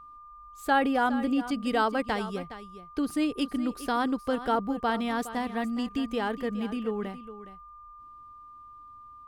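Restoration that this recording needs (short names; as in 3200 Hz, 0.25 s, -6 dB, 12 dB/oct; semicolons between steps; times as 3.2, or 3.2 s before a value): notch 1200 Hz, Q 30; inverse comb 0.415 s -13.5 dB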